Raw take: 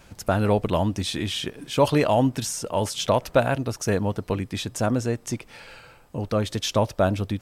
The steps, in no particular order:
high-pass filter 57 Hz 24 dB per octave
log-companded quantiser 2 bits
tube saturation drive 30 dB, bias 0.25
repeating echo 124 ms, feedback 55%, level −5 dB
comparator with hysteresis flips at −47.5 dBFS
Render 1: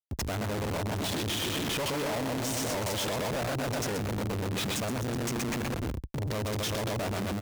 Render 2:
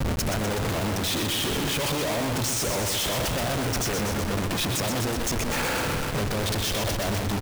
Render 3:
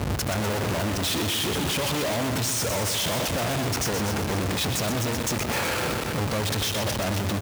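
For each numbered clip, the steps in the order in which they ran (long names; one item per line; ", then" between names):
repeating echo, then log-companded quantiser, then comparator with hysteresis, then high-pass filter, then tube saturation
tube saturation, then high-pass filter, then comparator with hysteresis, then repeating echo, then log-companded quantiser
comparator with hysteresis, then tube saturation, then repeating echo, then log-companded quantiser, then high-pass filter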